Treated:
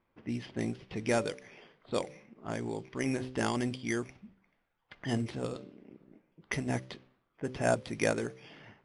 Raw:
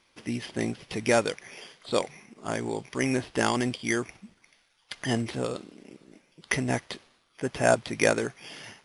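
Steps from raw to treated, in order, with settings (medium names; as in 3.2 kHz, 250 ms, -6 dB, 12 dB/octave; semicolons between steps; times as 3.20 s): level-controlled noise filter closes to 1.4 kHz, open at -24.5 dBFS; bass shelf 340 Hz +6.5 dB; de-hum 64.13 Hz, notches 9; trim -8 dB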